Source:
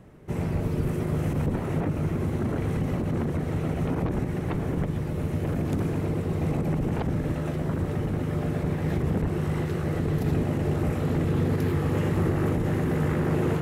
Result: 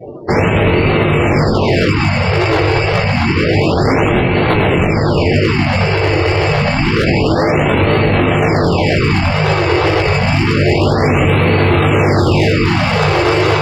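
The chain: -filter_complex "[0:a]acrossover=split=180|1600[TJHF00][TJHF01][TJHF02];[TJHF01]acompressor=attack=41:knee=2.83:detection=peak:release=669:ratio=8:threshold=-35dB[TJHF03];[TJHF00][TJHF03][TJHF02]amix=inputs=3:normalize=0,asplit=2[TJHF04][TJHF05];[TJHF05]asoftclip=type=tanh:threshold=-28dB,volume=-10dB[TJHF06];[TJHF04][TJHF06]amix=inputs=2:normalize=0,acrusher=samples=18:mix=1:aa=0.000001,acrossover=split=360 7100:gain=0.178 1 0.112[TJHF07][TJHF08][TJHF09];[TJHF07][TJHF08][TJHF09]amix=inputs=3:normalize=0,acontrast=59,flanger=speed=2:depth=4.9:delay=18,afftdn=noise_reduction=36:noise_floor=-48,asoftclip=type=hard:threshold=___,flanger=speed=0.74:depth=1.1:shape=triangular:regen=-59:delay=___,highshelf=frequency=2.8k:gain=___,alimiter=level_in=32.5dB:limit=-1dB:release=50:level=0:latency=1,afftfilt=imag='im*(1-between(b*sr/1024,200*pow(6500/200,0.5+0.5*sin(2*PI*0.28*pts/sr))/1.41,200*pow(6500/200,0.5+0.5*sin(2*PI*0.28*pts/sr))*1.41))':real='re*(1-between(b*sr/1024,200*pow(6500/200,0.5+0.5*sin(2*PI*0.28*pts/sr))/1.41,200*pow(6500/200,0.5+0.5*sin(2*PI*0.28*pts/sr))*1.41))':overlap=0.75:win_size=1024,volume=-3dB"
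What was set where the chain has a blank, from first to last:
-27dB, 8.6, -3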